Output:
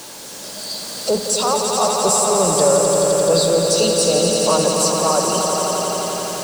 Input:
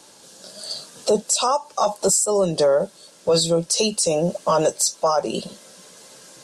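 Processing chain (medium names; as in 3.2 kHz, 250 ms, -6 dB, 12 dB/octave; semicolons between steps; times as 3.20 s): jump at every zero crossing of -30.5 dBFS; echo with a slow build-up 86 ms, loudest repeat 5, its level -6.5 dB; trim -1 dB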